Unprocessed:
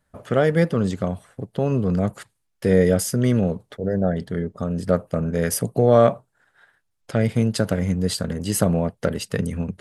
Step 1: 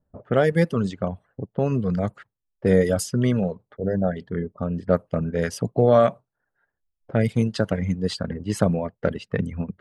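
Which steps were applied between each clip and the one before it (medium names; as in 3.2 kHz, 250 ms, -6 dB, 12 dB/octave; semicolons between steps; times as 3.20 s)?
reverb removal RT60 1 s; level-controlled noise filter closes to 590 Hz, open at -16 dBFS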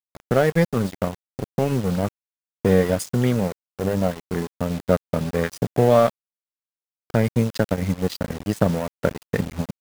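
in parallel at +2 dB: compression 8:1, threshold -27 dBFS, peak gain reduction 15.5 dB; on the sum: bit crusher 6-bit; crossover distortion -27.5 dBFS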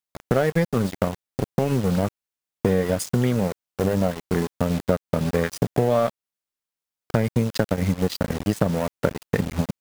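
compression 4:1, threshold -22 dBFS, peak gain reduction 10 dB; trim +5 dB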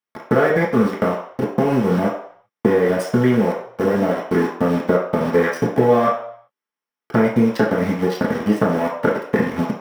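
reverberation RT60 0.60 s, pre-delay 3 ms, DRR -5 dB; trim -7.5 dB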